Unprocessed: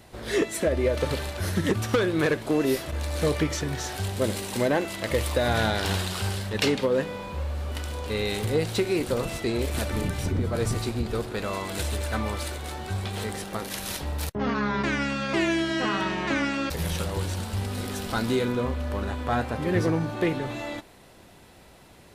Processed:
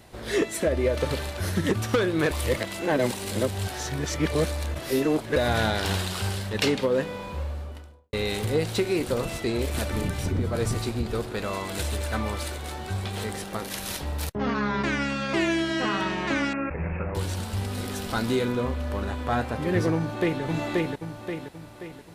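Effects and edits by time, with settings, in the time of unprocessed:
0:02.31–0:05.36: reverse
0:07.29–0:08.13: fade out and dull
0:16.53–0:17.15: Chebyshev low-pass filter 2,600 Hz, order 8
0:19.95–0:20.42: delay throw 530 ms, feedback 45%, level −1 dB

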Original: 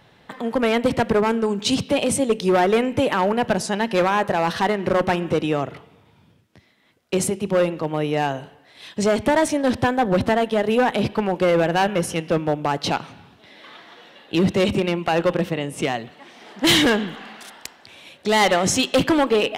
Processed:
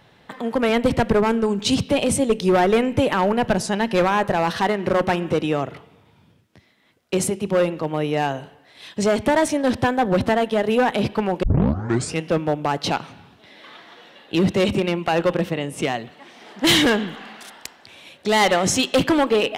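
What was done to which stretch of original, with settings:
0:00.69–0:04.44: low-shelf EQ 89 Hz +11.5 dB
0:11.43: tape start 0.76 s

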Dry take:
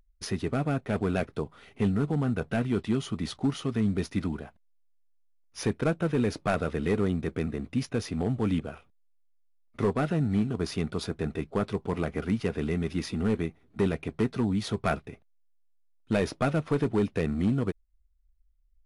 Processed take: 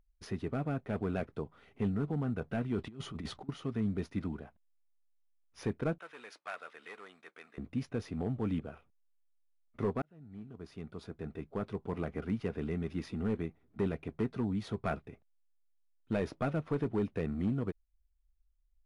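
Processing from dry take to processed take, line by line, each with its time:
0:02.78–0:03.49: compressor whose output falls as the input rises −33 dBFS, ratio −0.5
0:05.98–0:07.58: high-pass filter 1,200 Hz
0:10.02–0:11.98: fade in
whole clip: high-shelf EQ 3,500 Hz −11 dB; level −6.5 dB

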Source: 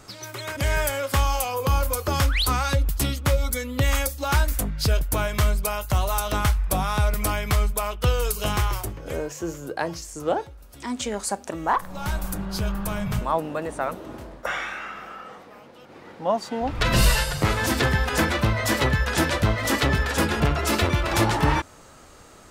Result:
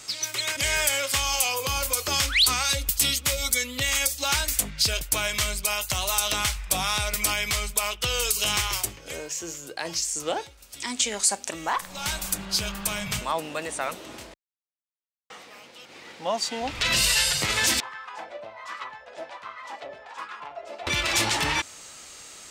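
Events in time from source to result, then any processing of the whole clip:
0:02.65–0:03.52: high-shelf EQ 9,100 Hz +8.5 dB
0:08.96–0:09.85: clip gain −3.5 dB
0:14.34–0:15.30: silence
0:17.80–0:20.87: LFO wah 1.3 Hz 600–1,200 Hz, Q 6.7
whole clip: flat-topped bell 4,200 Hz +8.5 dB 2.4 octaves; brickwall limiter −12.5 dBFS; spectral tilt +2 dB per octave; level −2.5 dB

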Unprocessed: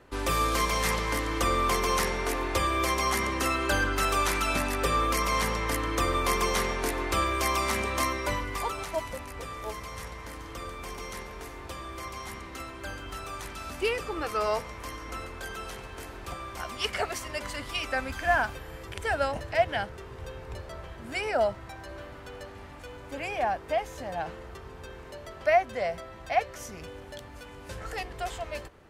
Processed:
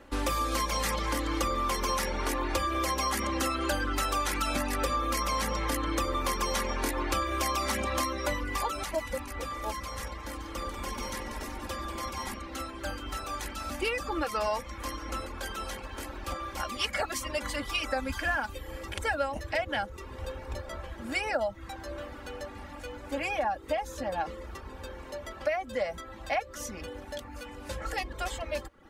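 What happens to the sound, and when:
0:10.35–0:12.35: echo with shifted repeats 190 ms, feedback 63%, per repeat −140 Hz, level −8 dB
whole clip: reverb reduction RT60 0.51 s; comb filter 3.6 ms, depth 63%; downward compressor, threshold −28 dBFS; level +2 dB

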